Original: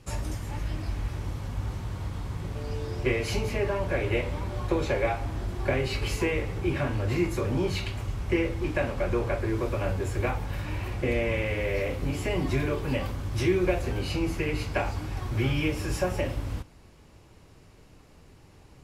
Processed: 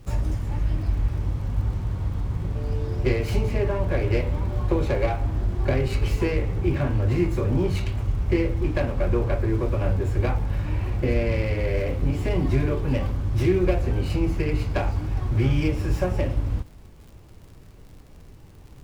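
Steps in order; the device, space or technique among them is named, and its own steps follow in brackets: tilt EQ -2 dB/octave; record under a worn stylus (tracing distortion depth 0.086 ms; crackle 61 per s -41 dBFS; pink noise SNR 41 dB)

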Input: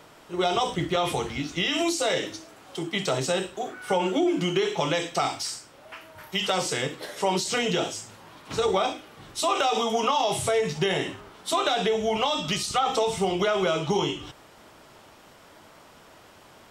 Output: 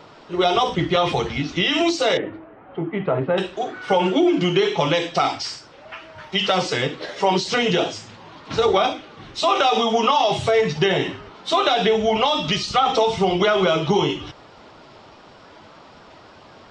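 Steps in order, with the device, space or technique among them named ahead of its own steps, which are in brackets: 2.17–3.38 s: Bessel low-pass 1.4 kHz, order 6; clip after many re-uploads (low-pass 5.4 kHz 24 dB/octave; coarse spectral quantiser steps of 15 dB); trim +6.5 dB

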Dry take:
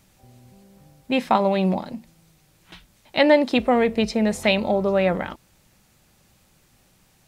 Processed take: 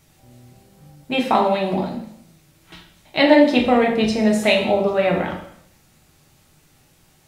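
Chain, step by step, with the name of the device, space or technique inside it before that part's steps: bathroom (reverberation RT60 0.70 s, pre-delay 3 ms, DRR -1 dB)

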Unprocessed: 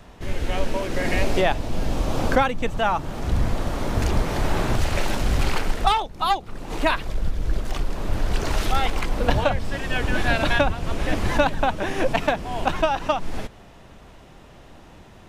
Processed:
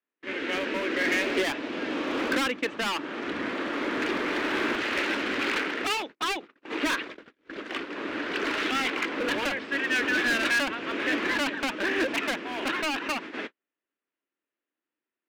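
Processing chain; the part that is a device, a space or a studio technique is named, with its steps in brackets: walkie-talkie (band-pass 590–2500 Hz; hard clipper -28.5 dBFS, distortion -5 dB; gate -41 dBFS, range -43 dB); FFT filter 150 Hz 0 dB, 290 Hz +15 dB, 750 Hz -8 dB, 1.6 kHz +6 dB, 2.6 kHz +7 dB, 5.2 kHz +4 dB; trim +1.5 dB

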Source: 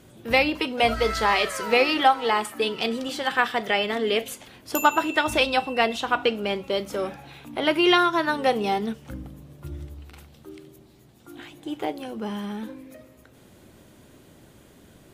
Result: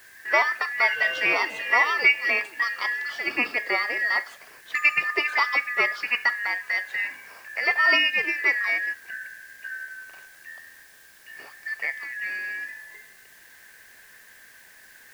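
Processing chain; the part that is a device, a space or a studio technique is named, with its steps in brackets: split-band scrambled radio (four frequency bands reordered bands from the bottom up 2143; band-pass 400–3200 Hz; white noise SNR 28 dB)

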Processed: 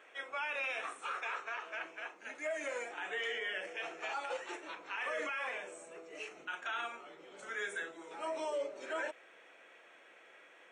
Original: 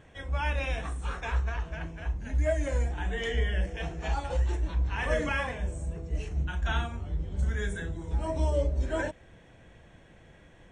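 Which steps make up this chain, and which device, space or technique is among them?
1.15–2.64 s: high-pass 190 Hz 12 dB/octave; laptop speaker (high-pass 380 Hz 24 dB/octave; peaking EQ 1.3 kHz +10 dB 0.32 oct; peaking EQ 2.4 kHz +9 dB 0.59 oct; peak limiter -26 dBFS, peak gain reduction 13 dB); trim -3.5 dB

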